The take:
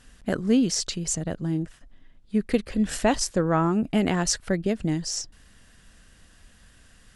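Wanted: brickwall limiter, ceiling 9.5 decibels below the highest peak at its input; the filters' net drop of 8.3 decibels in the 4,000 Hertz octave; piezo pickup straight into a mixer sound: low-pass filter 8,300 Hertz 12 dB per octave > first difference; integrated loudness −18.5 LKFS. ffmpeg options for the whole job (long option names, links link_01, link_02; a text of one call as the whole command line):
ffmpeg -i in.wav -af "equalizer=frequency=4000:width_type=o:gain=-7,alimiter=limit=-18dB:level=0:latency=1,lowpass=8300,aderivative,volume=18.5dB" out.wav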